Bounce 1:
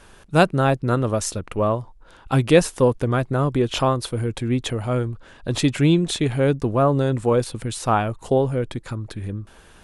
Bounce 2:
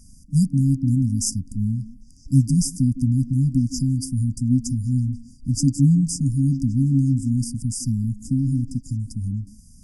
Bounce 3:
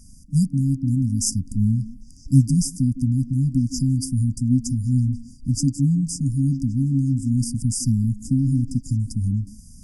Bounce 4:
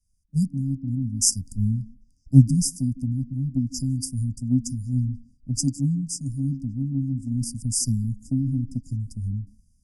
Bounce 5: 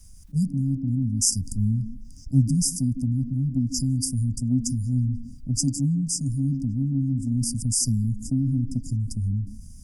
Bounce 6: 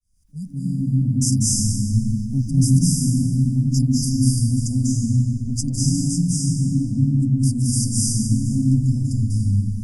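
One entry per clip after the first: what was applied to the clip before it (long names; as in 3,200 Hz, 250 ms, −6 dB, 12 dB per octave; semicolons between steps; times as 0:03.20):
echo through a band-pass that steps 160 ms, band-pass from 330 Hz, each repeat 0.7 octaves, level −9 dB; brick-wall band-stop 280–4,700 Hz; level +3.5 dB
speech leveller within 4 dB 0.5 s
multiband upward and downward expander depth 100%; level −5 dB
envelope flattener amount 50%; level −7 dB
fade in at the beginning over 0.77 s; convolution reverb RT60 1.7 s, pre-delay 189 ms, DRR −6 dB; level −3 dB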